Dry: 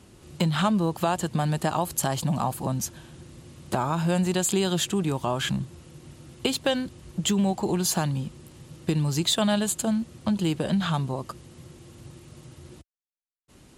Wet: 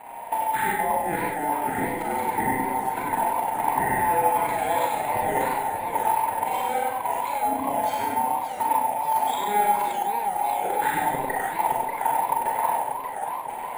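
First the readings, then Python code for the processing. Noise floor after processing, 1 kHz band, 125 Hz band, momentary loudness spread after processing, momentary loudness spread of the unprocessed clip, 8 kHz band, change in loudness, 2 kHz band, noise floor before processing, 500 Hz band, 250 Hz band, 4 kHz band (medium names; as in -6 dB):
-33 dBFS, +12.0 dB, -14.0 dB, 4 LU, 9 LU, -5.0 dB, +1.5 dB, +6.0 dB, -56 dBFS, +1.0 dB, -8.5 dB, -10.5 dB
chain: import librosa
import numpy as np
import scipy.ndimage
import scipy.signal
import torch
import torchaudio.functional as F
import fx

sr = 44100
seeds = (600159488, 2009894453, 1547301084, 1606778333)

y = fx.band_invert(x, sr, width_hz=1000)
y = scipy.signal.sosfilt(scipy.signal.butter(4, 2700.0, 'lowpass', fs=sr, output='sos'), y)
y = fx.low_shelf(y, sr, hz=140.0, db=-9.0)
y = fx.level_steps(y, sr, step_db=15)
y = fx.transient(y, sr, attack_db=7, sustain_db=-12)
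y = fx.over_compress(y, sr, threshold_db=-35.0, ratio=-0.5)
y = y + 10.0 ** (-3.5 / 20.0) * np.pad(y, (int(98 * sr / 1000.0), 0))[:len(y)]
y = fx.rev_schroeder(y, sr, rt60_s=0.75, comb_ms=30, drr_db=-2.0)
y = np.repeat(scipy.signal.resample_poly(y, 1, 4), 4)[:len(y)]
y = fx.echo_warbled(y, sr, ms=582, feedback_pct=66, rate_hz=2.8, cents=213, wet_db=-7.5)
y = F.gain(torch.from_numpy(y), 8.0).numpy()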